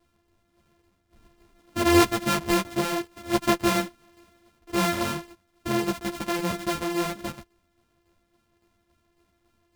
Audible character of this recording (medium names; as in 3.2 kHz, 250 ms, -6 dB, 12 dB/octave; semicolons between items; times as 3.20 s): a buzz of ramps at a fixed pitch in blocks of 128 samples; tremolo saw down 3.6 Hz, depth 45%; a shimmering, thickened sound